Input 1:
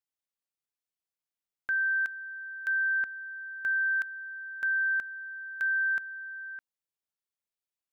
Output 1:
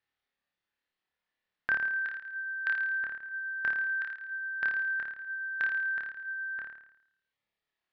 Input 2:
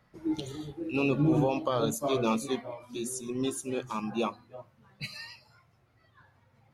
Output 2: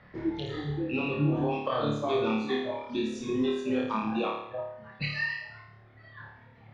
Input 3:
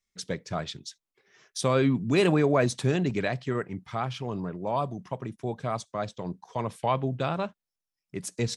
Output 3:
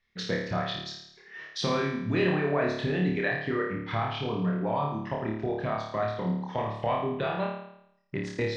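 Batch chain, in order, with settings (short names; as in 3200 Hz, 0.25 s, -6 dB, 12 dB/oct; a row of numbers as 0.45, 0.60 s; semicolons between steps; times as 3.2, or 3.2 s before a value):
reverb removal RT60 0.87 s; LPF 4000 Hz 24 dB/oct; bell 1800 Hz +9.5 dB 0.23 oct; compressor 3:1, threshold -40 dBFS; on a send: flutter echo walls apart 4.7 m, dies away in 0.76 s; on the sum: gain +8 dB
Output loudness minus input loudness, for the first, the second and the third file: -2.0, +0.5, -1.0 LU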